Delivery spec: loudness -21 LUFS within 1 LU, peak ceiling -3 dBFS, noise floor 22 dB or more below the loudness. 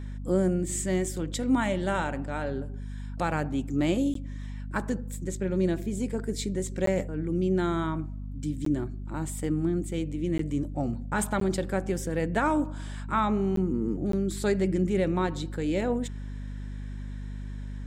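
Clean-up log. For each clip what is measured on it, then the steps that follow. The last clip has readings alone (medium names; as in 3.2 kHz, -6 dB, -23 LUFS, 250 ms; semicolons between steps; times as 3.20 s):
dropouts 7; longest dropout 13 ms; hum 50 Hz; highest harmonic 250 Hz; hum level -34 dBFS; loudness -29.0 LUFS; peak level -13.0 dBFS; loudness target -21.0 LUFS
-> interpolate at 4.14/6.86/8.65/10.38/11.40/13.56/14.12 s, 13 ms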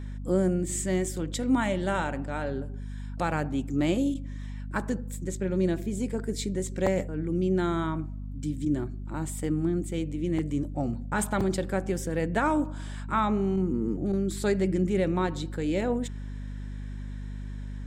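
dropouts 0; hum 50 Hz; highest harmonic 250 Hz; hum level -34 dBFS
-> de-hum 50 Hz, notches 5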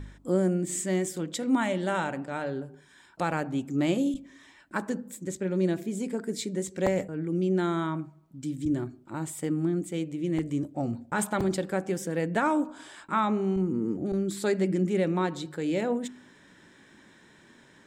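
hum not found; loudness -29.5 LUFS; peak level -14.0 dBFS; loudness target -21.0 LUFS
-> trim +8.5 dB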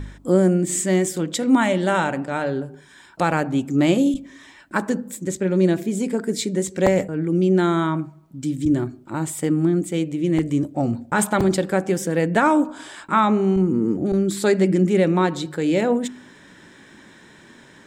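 loudness -21.0 LUFS; peak level -5.5 dBFS; noise floor -48 dBFS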